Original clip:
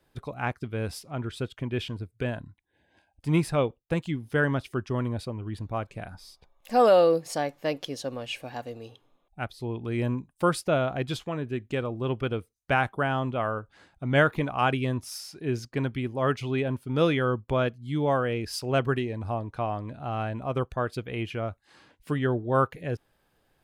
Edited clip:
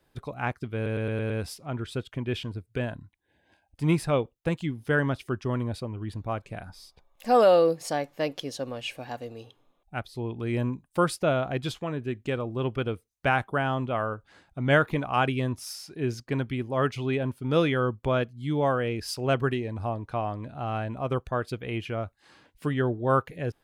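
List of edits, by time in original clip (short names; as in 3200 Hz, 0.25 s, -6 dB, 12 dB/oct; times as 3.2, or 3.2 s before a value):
0.75 stutter 0.11 s, 6 plays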